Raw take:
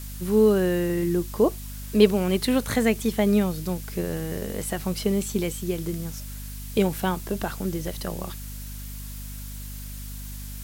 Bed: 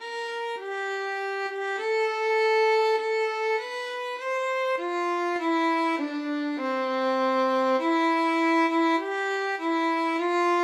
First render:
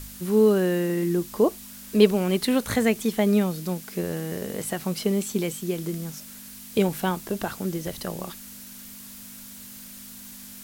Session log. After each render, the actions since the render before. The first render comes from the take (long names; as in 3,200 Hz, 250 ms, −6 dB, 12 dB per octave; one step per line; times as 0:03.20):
hum removal 50 Hz, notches 3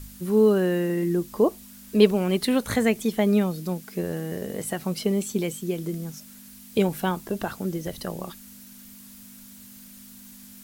broadband denoise 6 dB, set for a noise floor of −43 dBFS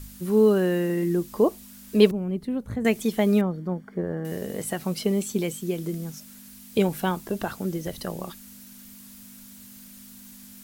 0:02.11–0:02.85: drawn EQ curve 130 Hz 0 dB, 680 Hz −12 dB, 2,700 Hz −20 dB, 4,000 Hz −23 dB
0:03.41–0:04.25: Savitzky-Golay smoothing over 41 samples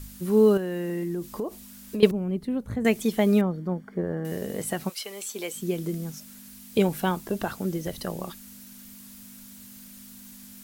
0:00.57–0:02.03: downward compressor 10 to 1, threshold −26 dBFS
0:04.88–0:05.55: high-pass filter 1,400 Hz → 420 Hz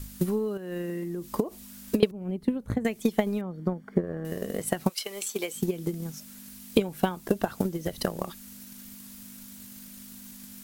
downward compressor 3 to 1, threshold −32 dBFS, peak gain reduction 15.5 dB
transient designer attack +12 dB, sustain −1 dB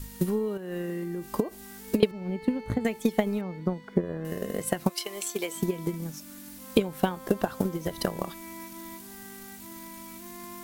mix in bed −22 dB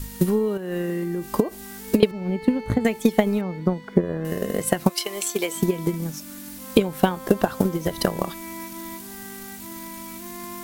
level +6.5 dB
brickwall limiter −1 dBFS, peak gain reduction 2.5 dB